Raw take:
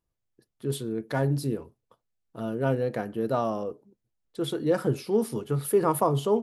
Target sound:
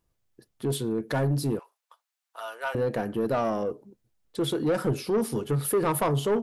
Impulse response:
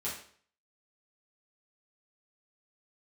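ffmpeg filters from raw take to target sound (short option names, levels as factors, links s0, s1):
-filter_complex "[0:a]asettb=1/sr,asplit=3[s0][s1][s2];[s0]atrim=end=1.594[s3];[s1]atrim=start=1.59:end=2.75,asetpts=PTS-STARTPTS,afade=t=in:d=0.004:c=qsin,afade=t=out:st=1.156:d=0.004:c=qsin,highpass=f=840:w=0.5412,highpass=f=840:w=1.3066[s4];[s2]atrim=start=2.746[s5];[s3][s4]acrossfade=d=0.004:c1=hsin:c2=qsin[s6];[s6][s5]acrossfade=d=0.004:c1=qsin:c2=hsin,asplit=2[s7][s8];[s8]acompressor=threshold=0.0178:ratio=6,volume=1.12[s9];[s7][s9]amix=inputs=2:normalize=0,asoftclip=type=tanh:threshold=0.1,volume=1.12"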